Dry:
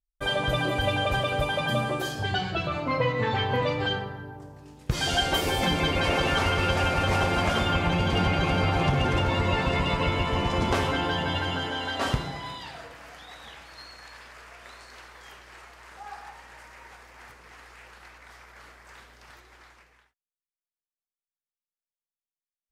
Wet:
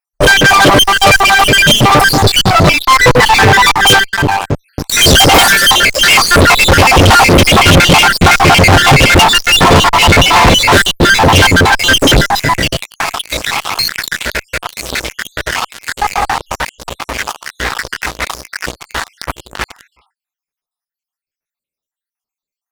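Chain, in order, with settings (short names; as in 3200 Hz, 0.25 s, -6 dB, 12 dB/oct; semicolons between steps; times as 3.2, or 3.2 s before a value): random spectral dropouts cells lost 72%; 5.49–6.24 HPF 930 Hz 24 dB/oct; sample leveller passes 5; one-sided clip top -31 dBFS, bottom -16 dBFS; 16.38–16.89 reverse; maximiser +24.5 dB; gain -1 dB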